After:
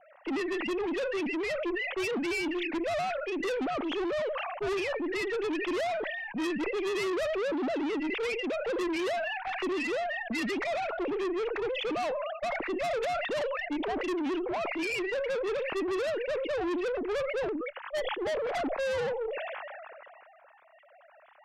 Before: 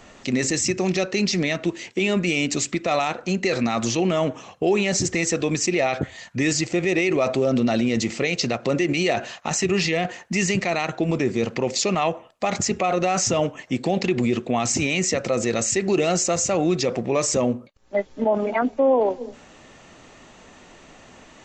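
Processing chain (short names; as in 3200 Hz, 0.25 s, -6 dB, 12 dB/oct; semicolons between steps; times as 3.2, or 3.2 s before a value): sine-wave speech; tube stage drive 29 dB, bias 0.25; low-pass opened by the level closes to 1400 Hz, open at -29.5 dBFS; sustainer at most 23 dB/s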